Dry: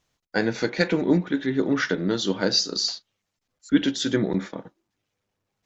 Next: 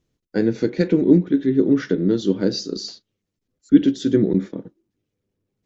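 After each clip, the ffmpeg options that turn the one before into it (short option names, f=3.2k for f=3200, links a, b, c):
-af "lowshelf=f=550:t=q:w=1.5:g=11.5,volume=-7dB"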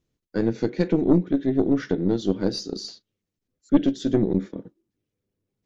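-af "aeval=exprs='(tanh(2.24*val(0)+0.55)-tanh(0.55))/2.24':c=same,volume=-1.5dB"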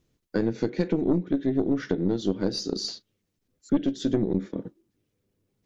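-af "acompressor=threshold=-31dB:ratio=2.5,volume=6dB"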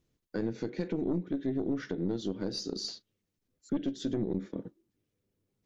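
-af "alimiter=limit=-16dB:level=0:latency=1:release=48,volume=-5.5dB"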